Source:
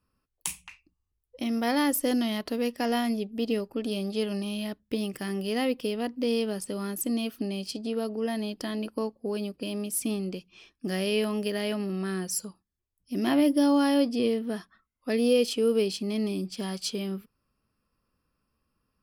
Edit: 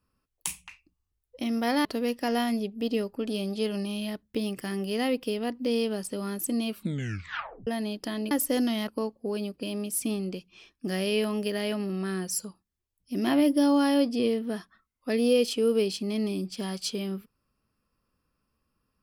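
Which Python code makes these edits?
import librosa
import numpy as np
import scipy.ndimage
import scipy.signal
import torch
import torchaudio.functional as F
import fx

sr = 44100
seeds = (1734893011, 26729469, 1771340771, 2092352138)

y = fx.edit(x, sr, fx.move(start_s=1.85, length_s=0.57, to_s=8.88),
    fx.tape_stop(start_s=7.25, length_s=0.99), tone=tone)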